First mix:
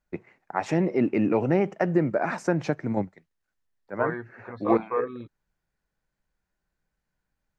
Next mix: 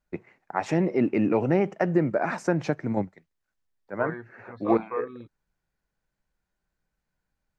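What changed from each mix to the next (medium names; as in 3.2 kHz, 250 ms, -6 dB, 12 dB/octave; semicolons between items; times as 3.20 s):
second voice -4.0 dB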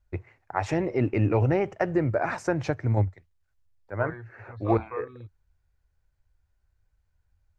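second voice -3.5 dB; master: add resonant low shelf 130 Hz +12 dB, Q 3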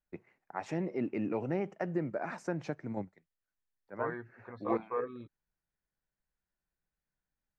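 first voice -11.0 dB; master: add resonant low shelf 130 Hz -12 dB, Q 3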